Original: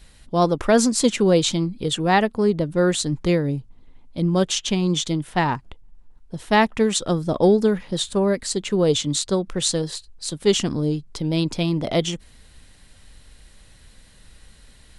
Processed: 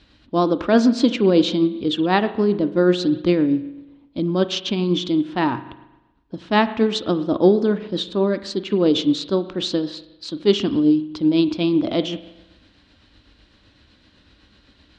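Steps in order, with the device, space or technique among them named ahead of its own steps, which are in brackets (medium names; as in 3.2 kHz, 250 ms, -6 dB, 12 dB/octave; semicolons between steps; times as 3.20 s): combo amplifier with spring reverb and tremolo (spring tank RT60 1 s, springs 39 ms, chirp 25 ms, DRR 12 dB; tremolo 7.9 Hz, depth 34%; cabinet simulation 81–4500 Hz, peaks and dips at 150 Hz -10 dB, 300 Hz +10 dB, 470 Hz -4 dB, 790 Hz -4 dB, 2 kHz -6 dB); trim +2.5 dB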